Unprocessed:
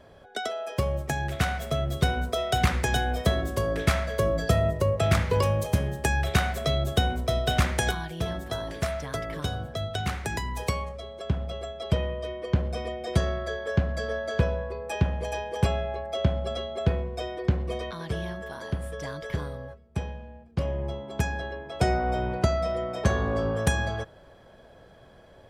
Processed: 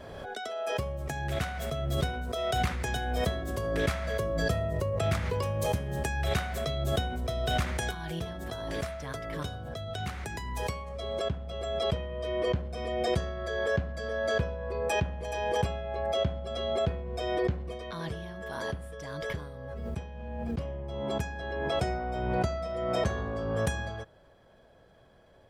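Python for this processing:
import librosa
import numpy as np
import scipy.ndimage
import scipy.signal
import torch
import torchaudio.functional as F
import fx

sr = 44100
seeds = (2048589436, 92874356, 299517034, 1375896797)

y = fx.pre_swell(x, sr, db_per_s=26.0)
y = y * 10.0 ** (-7.5 / 20.0)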